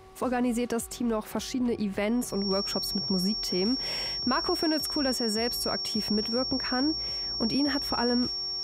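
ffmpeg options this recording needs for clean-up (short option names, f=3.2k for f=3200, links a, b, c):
-af "bandreject=f=378.7:t=h:w=4,bandreject=f=757.4:t=h:w=4,bandreject=f=1.1361k:t=h:w=4,bandreject=f=5.5k:w=30"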